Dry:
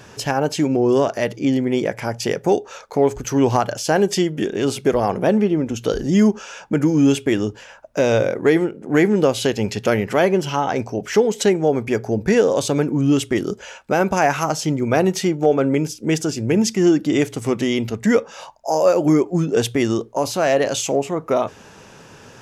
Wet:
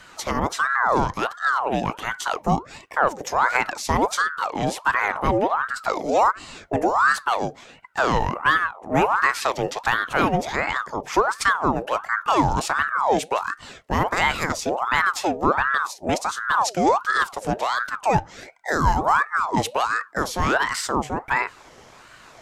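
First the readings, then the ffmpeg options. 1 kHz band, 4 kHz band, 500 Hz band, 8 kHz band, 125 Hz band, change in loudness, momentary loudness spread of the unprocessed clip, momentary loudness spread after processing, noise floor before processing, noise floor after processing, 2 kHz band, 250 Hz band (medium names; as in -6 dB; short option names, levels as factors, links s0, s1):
+5.0 dB, -2.5 dB, -8.5 dB, -4.5 dB, -7.0 dB, -3.0 dB, 6 LU, 6 LU, -44 dBFS, -48 dBFS, +5.5 dB, -11.0 dB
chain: -af "afreqshift=-110,aeval=exprs='val(0)*sin(2*PI*980*n/s+980*0.55/1.4*sin(2*PI*1.4*n/s))':c=same,volume=0.891"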